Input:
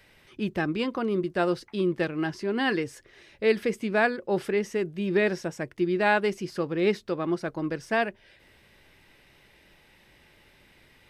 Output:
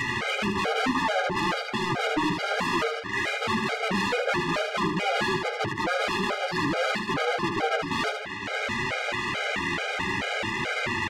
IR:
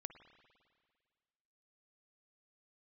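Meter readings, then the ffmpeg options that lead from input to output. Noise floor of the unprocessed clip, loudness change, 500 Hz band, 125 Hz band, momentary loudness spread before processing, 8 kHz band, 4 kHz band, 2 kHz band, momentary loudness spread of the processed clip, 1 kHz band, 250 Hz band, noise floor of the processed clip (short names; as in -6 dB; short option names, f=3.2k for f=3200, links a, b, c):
-59 dBFS, +0.5 dB, -2.5 dB, +1.5 dB, 7 LU, +9.0 dB, +9.5 dB, +5.0 dB, 3 LU, +6.0 dB, -1.5 dB, -34 dBFS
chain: -filter_complex "[0:a]equalizer=f=280:t=o:w=2.6:g=-7,acompressor=mode=upward:threshold=-29dB:ratio=2.5,aresample=11025,aeval=exprs='0.141*sin(PI/2*8.91*val(0)/0.141)':c=same,aresample=44100,aeval=exprs='0.266*(cos(1*acos(clip(val(0)/0.266,-1,1)))-cos(1*PI/2))+0.0211*(cos(3*acos(clip(val(0)/0.266,-1,1)))-cos(3*PI/2))+0.0668*(cos(7*acos(clip(val(0)/0.266,-1,1)))-cos(7*PI/2))':c=same,highpass=130,lowpass=2.2k,flanger=delay=7.7:depth=4.3:regen=2:speed=0.56:shape=triangular,asoftclip=type=tanh:threshold=-28dB,asplit=2[a][b];[b]aecho=0:1:77|154|231|308|385:0.531|0.234|0.103|0.0452|0.0199[c];[a][c]amix=inputs=2:normalize=0,afftfilt=real='re*gt(sin(2*PI*2.3*pts/sr)*(1-2*mod(floor(b*sr/1024/410),2)),0)':imag='im*gt(sin(2*PI*2.3*pts/sr)*(1-2*mod(floor(b*sr/1024/410),2)),0)':win_size=1024:overlap=0.75,volume=7.5dB"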